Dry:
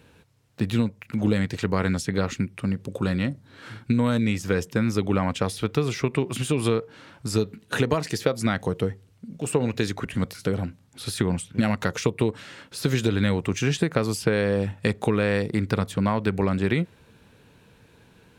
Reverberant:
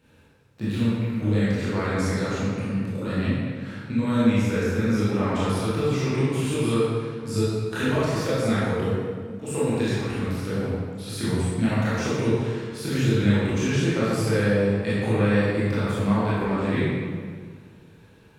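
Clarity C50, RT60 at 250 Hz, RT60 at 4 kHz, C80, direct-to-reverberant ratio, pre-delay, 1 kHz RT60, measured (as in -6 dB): -4.5 dB, 2.0 s, 1.2 s, -1.0 dB, -10.5 dB, 19 ms, 1.8 s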